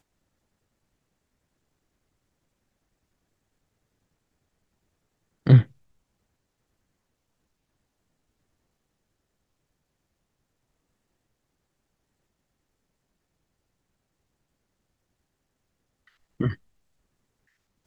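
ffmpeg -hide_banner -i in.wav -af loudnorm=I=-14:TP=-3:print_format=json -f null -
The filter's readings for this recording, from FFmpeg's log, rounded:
"input_i" : "-22.8",
"input_tp" : "-3.0",
"input_lra" : "12.0",
"input_thresh" : "-35.7",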